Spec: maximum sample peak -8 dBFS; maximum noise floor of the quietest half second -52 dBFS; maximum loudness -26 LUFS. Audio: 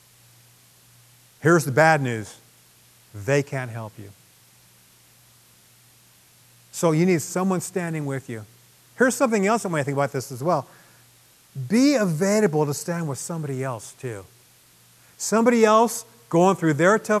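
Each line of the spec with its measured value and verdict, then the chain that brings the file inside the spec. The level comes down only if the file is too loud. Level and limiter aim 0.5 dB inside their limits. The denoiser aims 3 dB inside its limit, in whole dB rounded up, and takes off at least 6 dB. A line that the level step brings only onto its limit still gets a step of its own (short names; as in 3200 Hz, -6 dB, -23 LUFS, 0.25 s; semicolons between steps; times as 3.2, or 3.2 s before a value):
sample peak -2.0 dBFS: fail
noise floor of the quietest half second -55 dBFS: OK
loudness -22.0 LUFS: fail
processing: gain -4.5 dB; limiter -8.5 dBFS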